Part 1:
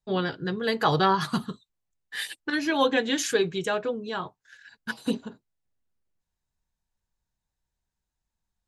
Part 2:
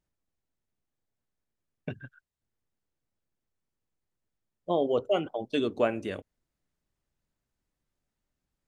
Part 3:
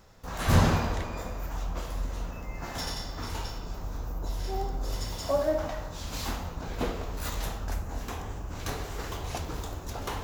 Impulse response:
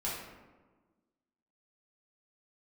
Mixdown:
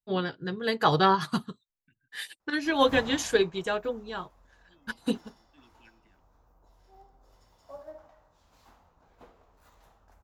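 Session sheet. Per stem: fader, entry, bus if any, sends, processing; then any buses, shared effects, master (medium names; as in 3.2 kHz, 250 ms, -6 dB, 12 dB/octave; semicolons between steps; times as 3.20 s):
+1.0 dB, 0.00 s, no send, none
-18.5 dB, 0.00 s, no send, Chebyshev band-stop 350–1500 Hz, order 5; sweeping bell 5.4 Hz 920–3000 Hz +16 dB
-17.0 dB, 2.40 s, no send, peaking EQ 910 Hz +9.5 dB 2.1 oct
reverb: none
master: upward expansion 1.5:1, over -45 dBFS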